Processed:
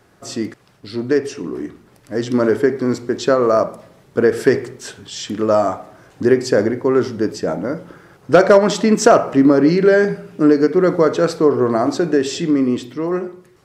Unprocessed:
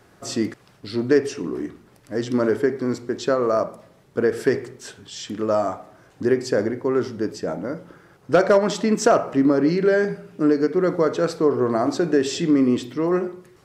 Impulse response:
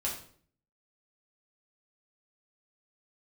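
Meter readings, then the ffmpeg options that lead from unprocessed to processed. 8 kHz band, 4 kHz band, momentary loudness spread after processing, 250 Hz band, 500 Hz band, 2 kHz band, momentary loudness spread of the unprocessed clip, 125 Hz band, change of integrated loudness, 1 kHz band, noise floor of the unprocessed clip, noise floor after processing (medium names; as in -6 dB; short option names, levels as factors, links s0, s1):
+5.0 dB, +4.5 dB, 15 LU, +4.5 dB, +5.5 dB, +5.5 dB, 13 LU, +5.0 dB, +5.5 dB, +5.5 dB, -54 dBFS, -52 dBFS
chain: -af "dynaudnorm=f=370:g=11:m=3.76"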